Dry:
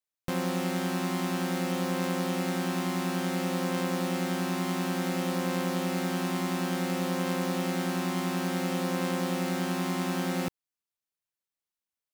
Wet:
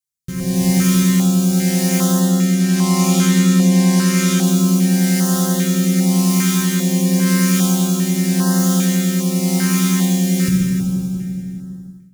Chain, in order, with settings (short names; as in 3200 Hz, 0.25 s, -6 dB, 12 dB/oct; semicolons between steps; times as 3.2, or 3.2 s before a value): 2.2–4.43 high shelf 12000 Hz -10.5 dB; rotary speaker horn 0.9 Hz; tone controls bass +10 dB, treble +12 dB; notch comb 290 Hz; reverb RT60 2.8 s, pre-delay 4 ms, DRR -2 dB; AGC gain up to 15 dB; flutter echo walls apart 11.3 m, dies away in 0.31 s; stepped notch 2.5 Hz 660–2300 Hz; gain -1 dB